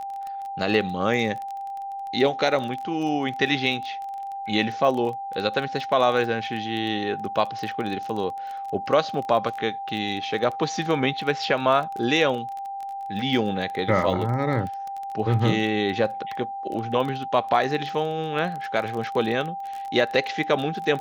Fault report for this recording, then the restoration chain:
crackle 21/s -29 dBFS
tone 790 Hz -30 dBFS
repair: de-click; notch 790 Hz, Q 30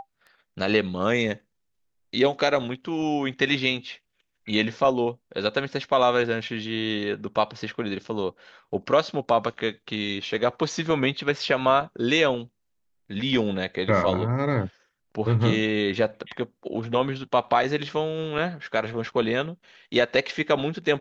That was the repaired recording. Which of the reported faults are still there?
none

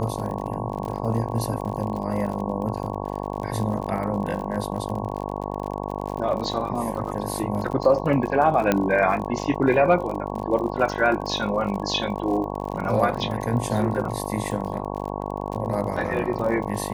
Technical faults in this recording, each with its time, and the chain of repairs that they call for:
buzz 50 Hz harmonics 22 -30 dBFS
crackle 48/s -31 dBFS
8.72 pop -6 dBFS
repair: de-click; de-hum 50 Hz, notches 22

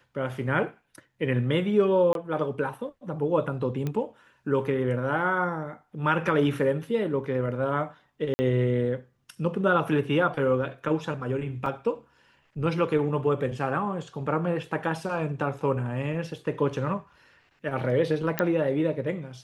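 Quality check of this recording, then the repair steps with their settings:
2.13–2.15 gap 22 ms
3.87 pop -18 dBFS
8.34–8.39 gap 50 ms
11.66 gap 2.2 ms
18.39 pop -8 dBFS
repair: de-click; interpolate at 2.13, 22 ms; interpolate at 8.34, 50 ms; interpolate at 11.66, 2.2 ms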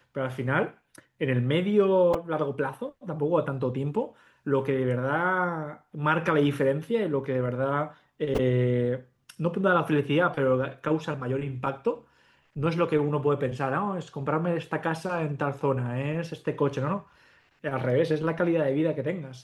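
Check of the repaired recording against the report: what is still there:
none

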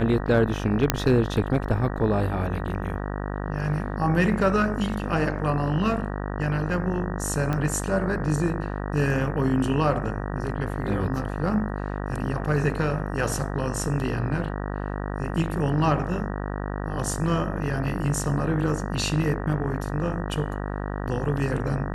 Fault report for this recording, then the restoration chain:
buzz 50 Hz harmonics 38 -30 dBFS
0.9 pop -2 dBFS
7.53 pop -15 dBFS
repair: de-click; de-hum 50 Hz, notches 38

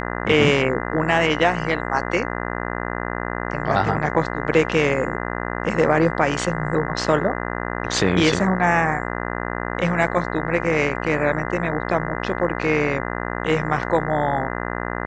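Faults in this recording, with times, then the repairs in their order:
buzz 60 Hz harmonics 34 -27 dBFS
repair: de-hum 60 Hz, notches 34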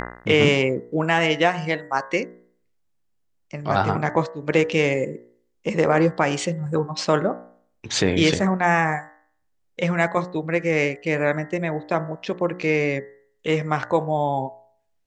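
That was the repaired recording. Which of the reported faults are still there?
none

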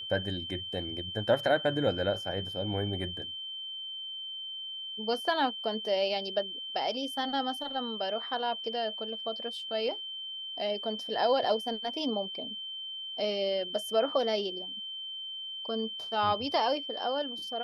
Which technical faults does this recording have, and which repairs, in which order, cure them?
tone 3100 Hz -37 dBFS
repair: notch 3100 Hz, Q 30

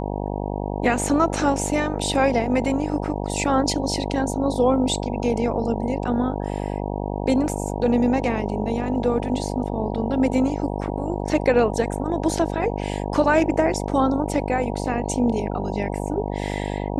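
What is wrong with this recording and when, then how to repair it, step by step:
buzz 50 Hz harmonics 19 -27 dBFS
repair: de-hum 50 Hz, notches 19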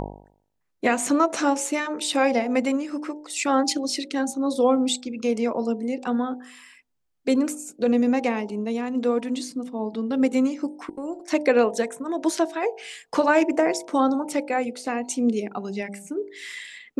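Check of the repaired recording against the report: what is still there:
none

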